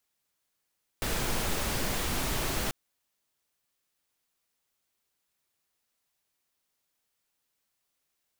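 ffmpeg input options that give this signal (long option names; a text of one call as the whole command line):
ffmpeg -f lavfi -i "anoisesrc=color=pink:amplitude=0.162:duration=1.69:sample_rate=44100:seed=1" out.wav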